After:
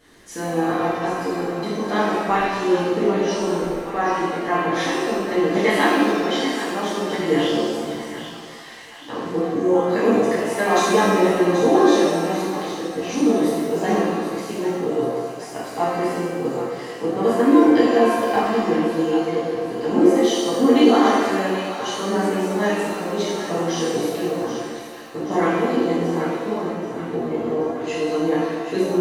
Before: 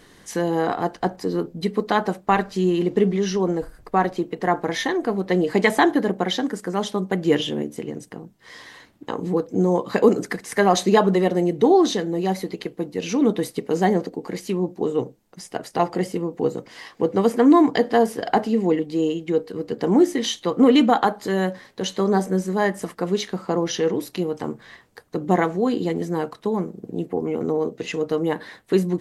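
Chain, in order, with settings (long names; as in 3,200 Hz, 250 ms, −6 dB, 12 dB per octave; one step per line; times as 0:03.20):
mains-hum notches 50/100/150/200 Hz
echo with a time of its own for lows and highs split 770 Hz, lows 173 ms, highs 781 ms, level −9.5 dB
reverb with rising layers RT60 1.2 s, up +7 semitones, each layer −8 dB, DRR −9 dB
level −9 dB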